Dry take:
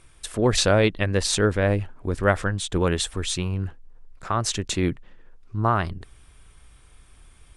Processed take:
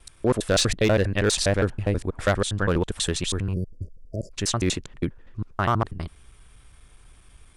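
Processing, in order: slices in reverse order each 81 ms, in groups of 3; overloaded stage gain 13.5 dB; spectral delete 3.54–4.32, 650–4500 Hz

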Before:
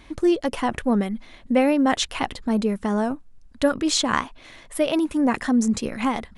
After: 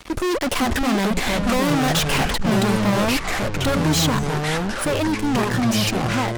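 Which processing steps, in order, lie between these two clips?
Doppler pass-by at 1.34, 12 m/s, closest 5.6 m; spectral delete 4.19–4.49, 230–5900 Hz; fuzz box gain 48 dB, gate -55 dBFS; echoes that change speed 0.482 s, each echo -5 st, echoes 3; gain -6.5 dB

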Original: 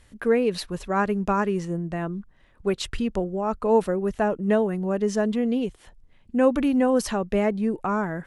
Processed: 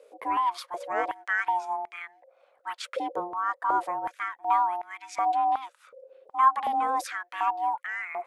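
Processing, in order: ring modulator 530 Hz; stepped high-pass 2.7 Hz 450–2100 Hz; gain -5 dB

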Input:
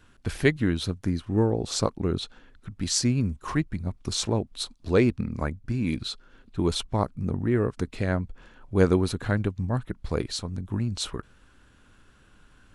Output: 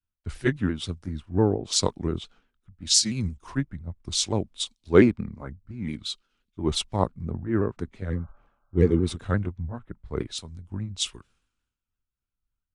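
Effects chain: repeated pitch sweeps -2.5 st, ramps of 0.173 s; spectral repair 8.12–9.05, 520–1600 Hz after; three-band expander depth 100%; gain -2 dB

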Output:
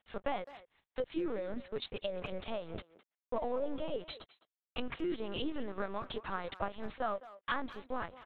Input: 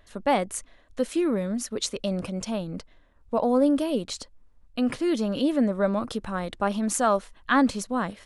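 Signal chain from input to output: Bessel high-pass 360 Hz, order 4; 4.18–6.44 bell 580 Hz -10.5 dB 0.24 oct; compressor 4:1, threshold -40 dBFS, peak gain reduction 19 dB; crossover distortion -57 dBFS; LPC vocoder at 8 kHz pitch kept; speakerphone echo 0.21 s, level -16 dB; gain +5.5 dB

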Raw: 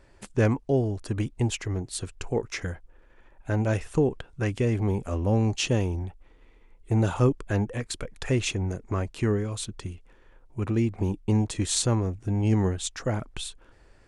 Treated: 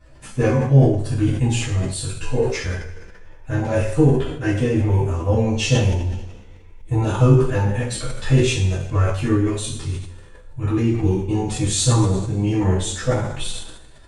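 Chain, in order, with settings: bin magnitudes rounded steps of 15 dB; chorus voices 6, 0.19 Hz, delay 14 ms, depth 1.8 ms; two-slope reverb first 0.55 s, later 1.5 s, from -15 dB, DRR -10 dB; sustainer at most 65 dB/s; gain -1 dB

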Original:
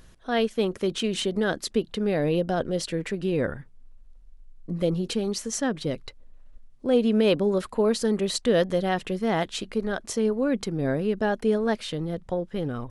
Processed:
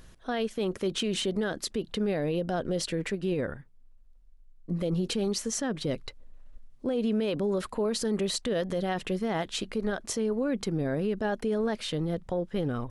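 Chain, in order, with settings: limiter -21 dBFS, peak gain reduction 10.5 dB; 3.1–4.71 upward expander 1.5:1, over -41 dBFS

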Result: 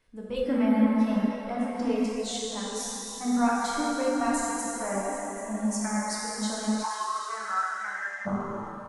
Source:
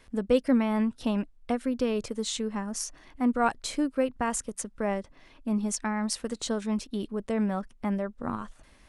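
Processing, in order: echo 0.784 s -13.5 dB; plate-style reverb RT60 4.8 s, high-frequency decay 0.85×, DRR -6.5 dB; spectral noise reduction 9 dB; 6.83–8.25 resonant high-pass 940 Hz -> 1800 Hz, resonance Q 10; gain -5 dB

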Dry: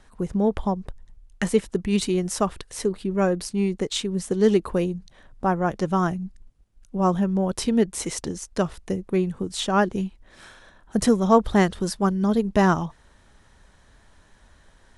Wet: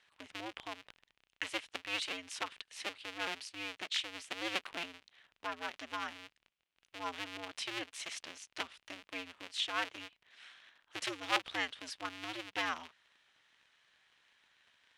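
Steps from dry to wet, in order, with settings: cycle switcher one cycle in 2, inverted; band-pass 2800 Hz, Q 1.9; gain -2.5 dB

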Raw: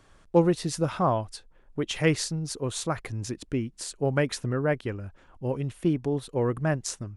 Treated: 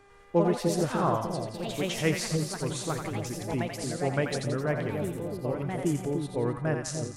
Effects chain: buzz 400 Hz, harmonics 6, -55 dBFS -4 dB/oct; echoes that change speed 99 ms, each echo +3 st, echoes 2, each echo -6 dB; split-band echo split 690 Hz, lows 0.298 s, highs 86 ms, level -5 dB; gain -4 dB

